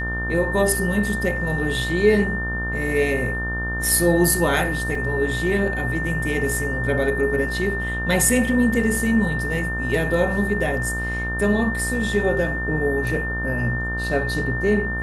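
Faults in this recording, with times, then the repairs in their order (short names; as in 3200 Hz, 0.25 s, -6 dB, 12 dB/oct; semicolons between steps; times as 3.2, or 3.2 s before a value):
buzz 60 Hz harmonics 31 -28 dBFS
tone 1800 Hz -26 dBFS
4.95 gap 3 ms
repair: de-hum 60 Hz, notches 31; notch 1800 Hz, Q 30; interpolate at 4.95, 3 ms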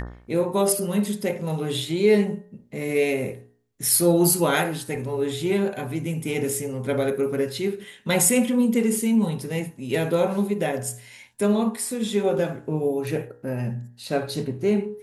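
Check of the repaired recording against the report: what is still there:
none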